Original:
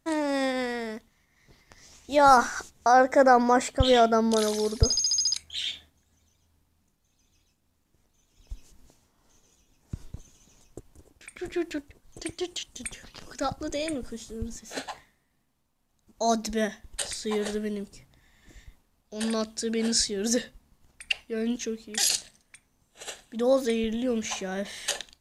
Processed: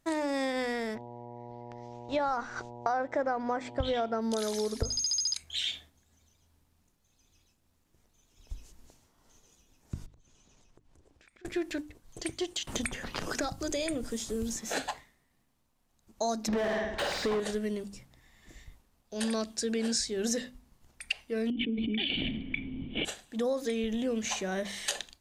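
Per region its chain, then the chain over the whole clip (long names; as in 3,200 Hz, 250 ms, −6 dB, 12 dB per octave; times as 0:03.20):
0:00.94–0:04.20: mu-law and A-law mismatch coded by A + low-pass filter 3,800 Hz + hum with harmonics 120 Hz, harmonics 8, −45 dBFS −1 dB per octave
0:10.06–0:11.45: downward compressor 8 to 1, threshold −56 dBFS + high-frequency loss of the air 59 metres
0:12.67–0:14.91: high-shelf EQ 8,000 Hz +4.5 dB + multiband upward and downward compressor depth 100%
0:16.48–0:17.40: high-frequency loss of the air 110 metres + flutter between parallel walls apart 8.9 metres, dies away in 0.48 s + mid-hump overdrive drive 32 dB, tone 1,000 Hz, clips at −16.5 dBFS
0:21.50–0:23.05: formant resonators in series i + envelope flattener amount 100%
whole clip: mains-hum notches 50/100/150/200/250/300 Hz; downward compressor 10 to 1, threshold −27 dBFS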